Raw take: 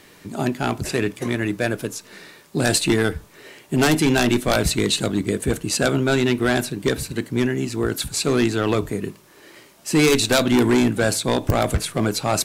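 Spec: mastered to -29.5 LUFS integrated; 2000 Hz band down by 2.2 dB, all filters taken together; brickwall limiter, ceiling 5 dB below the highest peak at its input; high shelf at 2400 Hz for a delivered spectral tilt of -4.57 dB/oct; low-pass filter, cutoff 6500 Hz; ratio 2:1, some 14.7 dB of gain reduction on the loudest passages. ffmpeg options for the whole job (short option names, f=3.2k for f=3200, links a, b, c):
-af "lowpass=6.5k,equalizer=f=2k:t=o:g=-4.5,highshelf=f=2.4k:g=3,acompressor=threshold=-42dB:ratio=2,volume=7dB,alimiter=limit=-19.5dB:level=0:latency=1"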